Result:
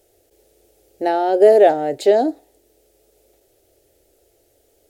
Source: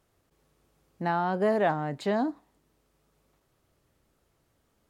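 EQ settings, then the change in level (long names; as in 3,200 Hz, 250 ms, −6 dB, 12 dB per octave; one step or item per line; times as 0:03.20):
flat-topped bell 570 Hz +9 dB
high-shelf EQ 5,700 Hz +10.5 dB
phaser with its sweep stopped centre 430 Hz, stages 4
+8.0 dB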